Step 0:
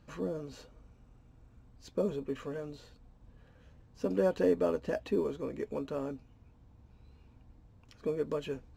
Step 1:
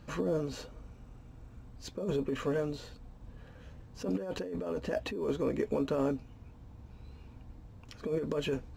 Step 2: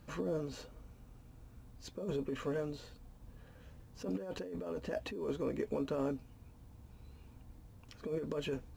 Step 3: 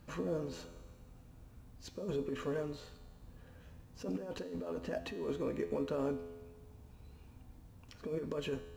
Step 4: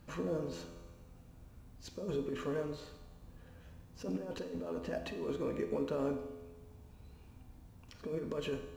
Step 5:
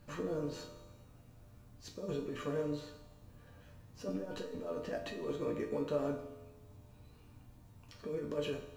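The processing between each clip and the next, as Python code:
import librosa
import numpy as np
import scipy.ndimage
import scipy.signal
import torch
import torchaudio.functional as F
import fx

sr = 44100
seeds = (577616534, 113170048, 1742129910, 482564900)

y1 = fx.over_compress(x, sr, threshold_db=-36.0, ratio=-1.0)
y1 = y1 * 10.0 ** (4.0 / 20.0)
y2 = fx.quant_dither(y1, sr, seeds[0], bits=12, dither='triangular')
y2 = y2 * 10.0 ** (-5.0 / 20.0)
y3 = fx.comb_fb(y2, sr, f0_hz=85.0, decay_s=1.5, harmonics='all', damping=0.0, mix_pct=70)
y3 = y3 * 10.0 ** (9.0 / 20.0)
y4 = fx.rev_schroeder(y3, sr, rt60_s=0.8, comb_ms=32, drr_db=10.5)
y5 = fx.resonator_bank(y4, sr, root=43, chord='minor', decay_s=0.23)
y5 = y5 * 10.0 ** (11.0 / 20.0)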